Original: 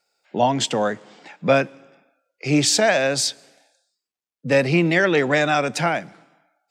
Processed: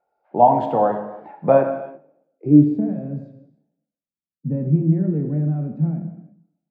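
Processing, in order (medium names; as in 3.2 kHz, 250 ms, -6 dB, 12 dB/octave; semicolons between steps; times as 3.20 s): dynamic bell 5.5 kHz, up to -6 dB, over -42 dBFS, Q 6.8; low-pass sweep 830 Hz -> 200 Hz, 1.74–2.89 s; gated-style reverb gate 370 ms falling, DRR 4 dB; trim -1.5 dB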